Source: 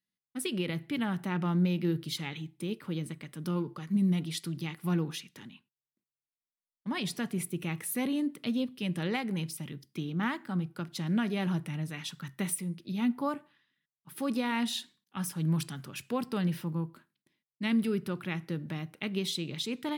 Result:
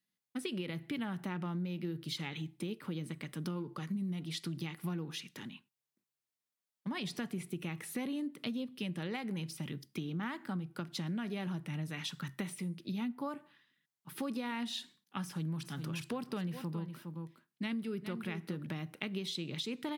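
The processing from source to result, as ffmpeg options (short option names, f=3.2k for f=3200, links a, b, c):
-filter_complex "[0:a]asplit=3[a][b][c];[a]afade=t=out:st=15.63:d=0.02[d];[b]aecho=1:1:412:0.251,afade=t=in:st=15.63:d=0.02,afade=t=out:st=18.65:d=0.02[e];[c]afade=t=in:st=18.65:d=0.02[f];[d][e][f]amix=inputs=3:normalize=0,acrossover=split=6400[g][h];[h]acompressor=threshold=-50dB:ratio=4:attack=1:release=60[i];[g][i]amix=inputs=2:normalize=0,highpass=100,acompressor=threshold=-38dB:ratio=6,volume=2.5dB"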